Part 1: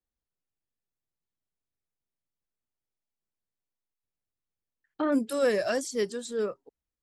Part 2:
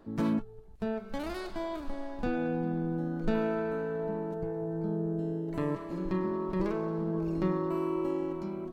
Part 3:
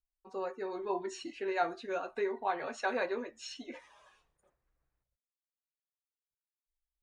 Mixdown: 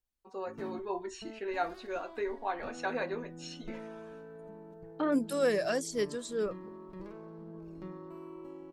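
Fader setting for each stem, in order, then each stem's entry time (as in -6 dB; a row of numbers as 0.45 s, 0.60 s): -3.0 dB, -15.0 dB, -1.5 dB; 0.00 s, 0.40 s, 0.00 s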